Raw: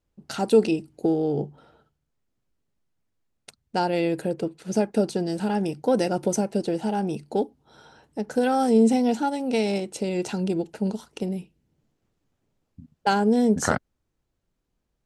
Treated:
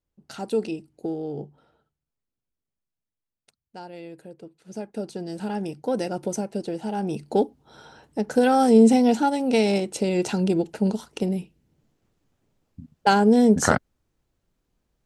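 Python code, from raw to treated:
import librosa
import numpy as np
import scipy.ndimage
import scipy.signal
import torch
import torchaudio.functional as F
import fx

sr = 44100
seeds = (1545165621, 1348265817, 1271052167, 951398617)

y = fx.gain(x, sr, db=fx.line((1.44, -7.0), (3.8, -16.0), (4.37, -16.0), (5.46, -4.0), (6.84, -4.0), (7.31, 3.5)))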